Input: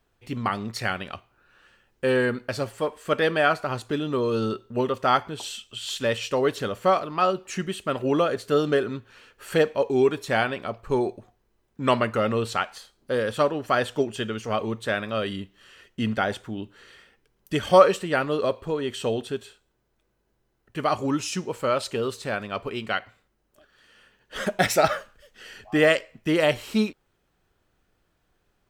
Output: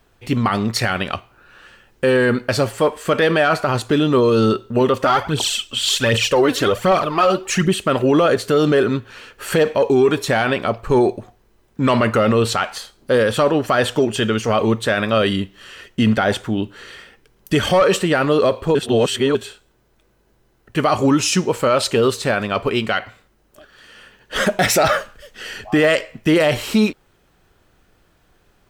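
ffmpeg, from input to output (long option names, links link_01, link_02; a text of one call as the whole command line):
ffmpeg -i in.wav -filter_complex "[0:a]asplit=3[link_01][link_02][link_03];[link_01]afade=type=out:start_time=5:duration=0.02[link_04];[link_02]aphaser=in_gain=1:out_gain=1:delay=4.1:decay=0.6:speed=1.3:type=triangular,afade=type=in:start_time=5:duration=0.02,afade=type=out:start_time=7.73:duration=0.02[link_05];[link_03]afade=type=in:start_time=7.73:duration=0.02[link_06];[link_04][link_05][link_06]amix=inputs=3:normalize=0,asplit=3[link_07][link_08][link_09];[link_07]atrim=end=18.752[link_10];[link_08]atrim=start=18.748:end=19.352,asetpts=PTS-STARTPTS,areverse[link_11];[link_09]atrim=start=19.348[link_12];[link_10][link_11]acrossfade=duration=0.004:curve1=hsin:curve2=hsin[link_13];[link_13][link_12]acrossfade=duration=0.004:curve1=hsin:curve2=hsin,acontrast=88,alimiter=limit=-12.5dB:level=0:latency=1:release=23,volume=5dB" out.wav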